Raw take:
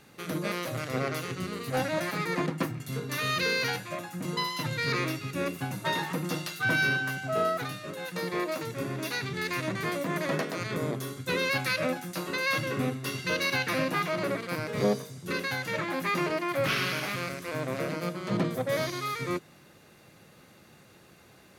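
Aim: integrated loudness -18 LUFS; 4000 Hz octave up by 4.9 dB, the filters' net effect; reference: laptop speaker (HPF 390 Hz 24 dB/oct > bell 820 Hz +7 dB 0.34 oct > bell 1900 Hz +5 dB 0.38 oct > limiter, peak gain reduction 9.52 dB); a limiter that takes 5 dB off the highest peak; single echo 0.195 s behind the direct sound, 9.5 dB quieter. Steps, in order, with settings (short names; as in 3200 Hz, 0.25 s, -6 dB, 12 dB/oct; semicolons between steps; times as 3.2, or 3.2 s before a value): bell 4000 Hz +5.5 dB; limiter -19.5 dBFS; HPF 390 Hz 24 dB/oct; bell 820 Hz +7 dB 0.34 oct; bell 1900 Hz +5 dB 0.38 oct; echo 0.195 s -9.5 dB; gain +15 dB; limiter -9 dBFS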